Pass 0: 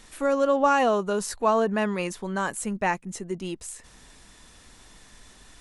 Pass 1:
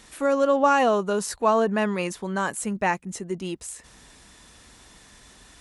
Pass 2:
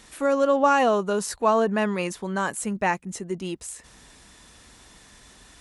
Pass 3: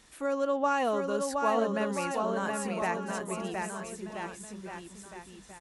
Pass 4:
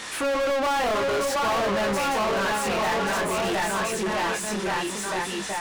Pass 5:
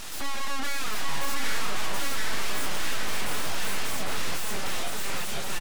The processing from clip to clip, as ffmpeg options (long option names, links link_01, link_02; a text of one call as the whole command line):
ffmpeg -i in.wav -af "highpass=41,volume=1.5dB" out.wav
ffmpeg -i in.wav -af anull out.wav
ffmpeg -i in.wav -af "aecho=1:1:720|1332|1852|2294|2670:0.631|0.398|0.251|0.158|0.1,volume=-8.5dB" out.wav
ffmpeg -i in.wav -filter_complex "[0:a]flanger=delay=20:depth=8:speed=0.55,asplit=2[link_01][link_02];[link_02]highpass=frequency=720:poles=1,volume=38dB,asoftclip=type=tanh:threshold=-18dB[link_03];[link_01][link_03]amix=inputs=2:normalize=0,lowpass=frequency=4200:poles=1,volume=-6dB" out.wav
ffmpeg -i in.wav -af "aeval=exprs='abs(val(0))':channel_layout=same,aecho=1:1:805:0.631" out.wav